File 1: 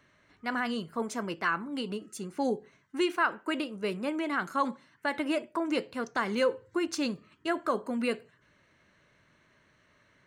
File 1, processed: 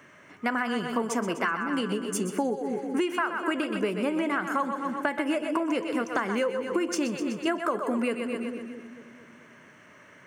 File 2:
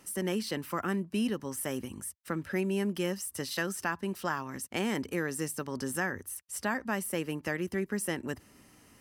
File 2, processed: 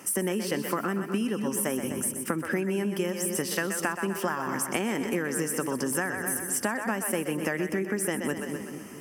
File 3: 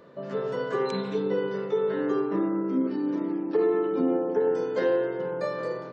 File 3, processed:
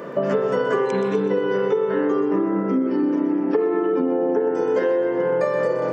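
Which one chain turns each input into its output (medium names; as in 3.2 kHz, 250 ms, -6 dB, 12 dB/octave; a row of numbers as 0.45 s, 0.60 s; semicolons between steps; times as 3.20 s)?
on a send: two-band feedback delay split 390 Hz, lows 222 ms, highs 125 ms, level -9 dB; on the sum: compression 12:1, threshold -36 dBFS; high-pass 160 Hz 12 dB/octave; peaking EQ 4 kHz -14.5 dB 0.35 oct; peak normalisation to -9 dBFS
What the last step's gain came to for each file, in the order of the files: +12.5 dB, +12.0 dB, +19.0 dB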